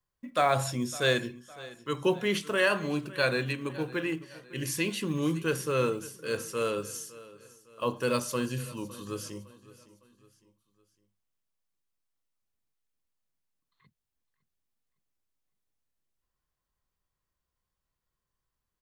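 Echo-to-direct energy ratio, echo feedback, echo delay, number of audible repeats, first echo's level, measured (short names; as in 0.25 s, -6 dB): -18.0 dB, 44%, 0.558 s, 3, -19.0 dB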